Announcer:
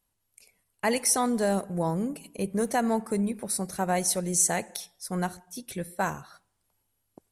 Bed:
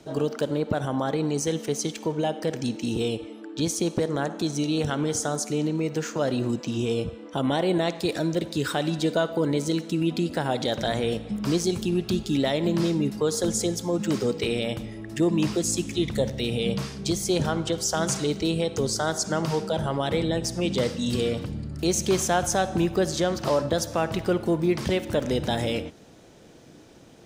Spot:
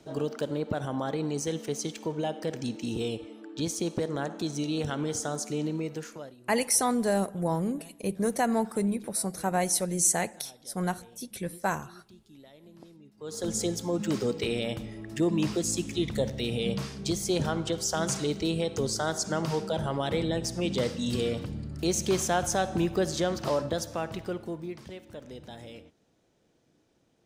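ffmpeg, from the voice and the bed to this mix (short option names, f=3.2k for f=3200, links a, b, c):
-filter_complex "[0:a]adelay=5650,volume=-0.5dB[a];[1:a]volume=20.5dB,afade=t=out:st=5.75:d=0.6:silence=0.0630957,afade=t=in:st=13.17:d=0.42:silence=0.0530884,afade=t=out:st=23.33:d=1.53:silence=0.177828[b];[a][b]amix=inputs=2:normalize=0"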